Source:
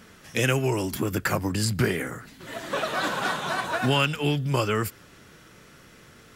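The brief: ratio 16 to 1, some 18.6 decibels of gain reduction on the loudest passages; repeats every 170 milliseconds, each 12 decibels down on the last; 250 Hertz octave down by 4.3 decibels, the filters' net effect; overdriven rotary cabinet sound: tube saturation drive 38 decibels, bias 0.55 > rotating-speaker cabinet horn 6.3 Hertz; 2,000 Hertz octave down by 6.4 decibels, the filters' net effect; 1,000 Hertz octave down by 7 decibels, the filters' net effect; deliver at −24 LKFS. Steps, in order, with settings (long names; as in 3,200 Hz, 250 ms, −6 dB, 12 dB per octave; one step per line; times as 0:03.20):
parametric band 250 Hz −5.5 dB
parametric band 1,000 Hz −7 dB
parametric band 2,000 Hz −6.5 dB
downward compressor 16 to 1, threshold −40 dBFS
repeating echo 170 ms, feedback 25%, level −12 dB
tube saturation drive 38 dB, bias 0.55
rotating-speaker cabinet horn 6.3 Hz
level +26 dB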